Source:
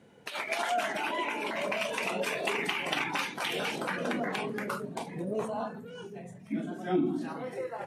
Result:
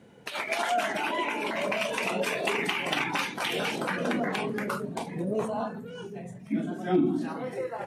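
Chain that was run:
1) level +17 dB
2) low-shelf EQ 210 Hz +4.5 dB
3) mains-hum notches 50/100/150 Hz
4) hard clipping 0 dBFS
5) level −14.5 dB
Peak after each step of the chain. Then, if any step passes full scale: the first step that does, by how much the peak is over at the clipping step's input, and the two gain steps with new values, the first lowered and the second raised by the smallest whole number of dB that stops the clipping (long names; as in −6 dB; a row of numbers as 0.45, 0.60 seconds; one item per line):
+3.5, +4.0, +4.0, 0.0, −14.5 dBFS
step 1, 4.0 dB
step 1 +13 dB, step 5 −10.5 dB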